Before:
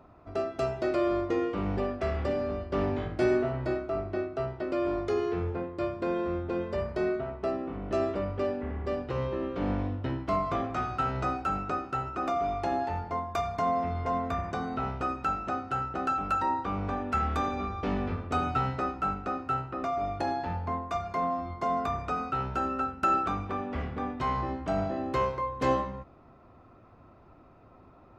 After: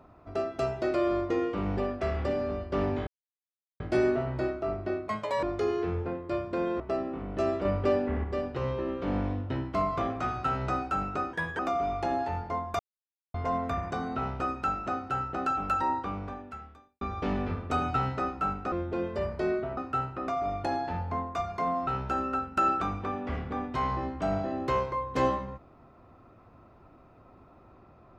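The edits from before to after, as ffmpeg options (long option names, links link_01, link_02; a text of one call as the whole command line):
ffmpeg -i in.wav -filter_complex "[0:a]asplit=15[link_01][link_02][link_03][link_04][link_05][link_06][link_07][link_08][link_09][link_10][link_11][link_12][link_13][link_14][link_15];[link_01]atrim=end=3.07,asetpts=PTS-STARTPTS,afade=type=out:start_time=3.066:duration=0.004:curve=hsin,apad=pad_dur=0.73[link_16];[link_02]atrim=start=3.07:end=4.354,asetpts=PTS-STARTPTS,afade=type=in:duration=0.004:curve=hsin[link_17];[link_03]atrim=start=4.35:end=4.92,asetpts=PTS-STARTPTS,asetrate=71883,aresample=44100,atrim=end_sample=15421,asetpts=PTS-STARTPTS[link_18];[link_04]atrim=start=4.916:end=6.292[link_19];[link_05]atrim=start=7.338:end=8.192[link_20];[link_06]atrim=start=8.188:end=8.782,asetpts=PTS-STARTPTS,volume=4.5dB[link_21];[link_07]atrim=start=8.778:end=11.874[link_22];[link_08]atrim=start=11.87:end=12.2,asetpts=PTS-STARTPTS,asetrate=55566,aresample=44100[link_23];[link_09]atrim=start=12.196:end=13.4,asetpts=PTS-STARTPTS,afade=type=out:start_time=1.2:duration=0.004:curve=hsin[link_24];[link_10]atrim=start=13.4:end=13.95,asetpts=PTS-STARTPTS,volume=0[link_25];[link_11]atrim=start=13.95:end=17.62,asetpts=PTS-STARTPTS,afade=type=in:duration=0.004:curve=hsin,afade=type=out:start_time=2.62:duration=1.05:curve=qua[link_26];[link_12]atrim=start=17.62:end=19.332,asetpts=PTS-STARTPTS,afade=type=in:duration=0.004:curve=hsin[link_27];[link_13]atrim=start=6.288:end=7.342[link_28];[link_14]atrim=start=19.328:end=21.432[link_29];[link_15]atrim=start=22.328[link_30];[link_16][link_17]concat=n=2:v=0:a=1[link_31];[link_31][link_18]acrossfade=duration=0.004:curve1=hsin:curve2=hsin[link_32];[link_32][link_19]acrossfade=duration=0.004:curve1=hsin:curve2=hsin[link_33];[link_33][link_20]acrossfade=duration=0.004:curve1=hsin:curve2=hsin[link_34];[link_34][link_21]acrossfade=duration=0.004:curve1=hsin:curve2=hsin[link_35];[link_35][link_22]acrossfade=duration=0.004:curve1=hsin:curve2=hsin[link_36];[link_36][link_23]acrossfade=duration=0.004:curve1=hsin:curve2=hsin[link_37];[link_24][link_25][link_26][link_27]concat=n=4:v=0:a=1[link_38];[link_37][link_38]acrossfade=duration=0.004:curve1=hsin:curve2=hsin[link_39];[link_39][link_28]acrossfade=duration=0.004:curve1=hsin:curve2=hsin[link_40];[link_40][link_29]acrossfade=duration=0.004:curve1=hsin:curve2=hsin[link_41];[link_41][link_30]acrossfade=duration=0.004:curve1=hsin:curve2=hsin" out.wav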